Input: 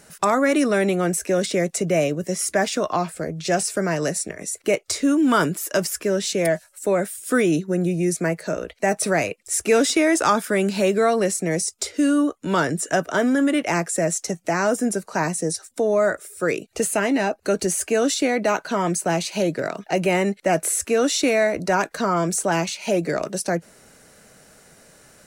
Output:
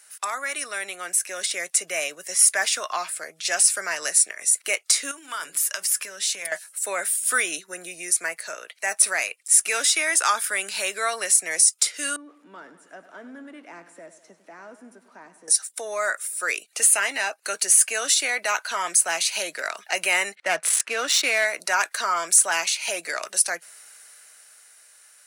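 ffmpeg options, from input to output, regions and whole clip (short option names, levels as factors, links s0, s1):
-filter_complex "[0:a]asettb=1/sr,asplit=3[s0][s1][s2];[s0]atrim=end=5.114[s3];[s1]atrim=start=5.11:end=6.52,asetpts=PTS-STARTPTS,afade=t=in:d=0.004:c=qsin,afade=t=out:st=1.406:d=0.004:c=qsin,bandreject=f=60:t=h:w=6,bandreject=f=120:t=h:w=6,bandreject=f=180:t=h:w=6,bandreject=f=240:t=h:w=6,bandreject=f=300:t=h:w=6,bandreject=f=360:t=h:w=6,bandreject=f=420:t=h:w=6,bandreject=f=480:t=h:w=6,bandreject=f=540:t=h:w=6,asubboost=boost=10:cutoff=160,acompressor=threshold=0.0447:ratio=6:attack=3.2:release=140:knee=1:detection=peak[s4];[s2]atrim=start=6.516[s5];[s3][s4]acrossfade=d=0.004:c1=hsin:c2=qsin[s6];[s6][s5]acrossfade=d=0.004:c1=qsin:c2=hsin,asettb=1/sr,asplit=3[s7][s8][s9];[s7]atrim=end=12.164[s10];[s8]atrim=start=12.16:end=15.48,asetpts=PTS-STARTPTS,afade=t=in:d=0.004:c=qsin,afade=t=out:st=3.316:d=0.004:c=qsin,aeval=exprs='val(0)+0.5*0.0266*sgn(val(0))':c=same,bandpass=f=230:t=q:w=2.6,aecho=1:1:99|198|297|396|495|594:0.211|0.123|0.0711|0.0412|0.0239|0.0139,atrim=end_sample=146412[s11];[s9]atrim=start=15.476[s12];[s10][s11]acrossfade=d=0.004:c1=hsin:c2=qsin[s13];[s13][s12]acrossfade=d=0.004:c1=qsin:c2=hsin,asettb=1/sr,asplit=3[s14][s15][s16];[s14]atrim=end=20.354[s17];[s15]atrim=start=20.35:end=21.45,asetpts=PTS-STARTPTS,afade=t=in:d=0.004:c=qsin,afade=t=out:st=1.096:d=0.004:c=qsin,highpass=f=160:t=q:w=2,adynamicsmooth=sensitivity=2.5:basefreq=2500[s18];[s16]atrim=start=21.446[s19];[s17][s18]acrossfade=d=0.004:c1=hsin:c2=qsin[s20];[s20][s19]acrossfade=d=0.004:c1=qsin:c2=hsin,highpass=1400,equalizer=f=9700:w=3.1:g=8,dynaudnorm=f=170:g=17:m=3.76,volume=0.75"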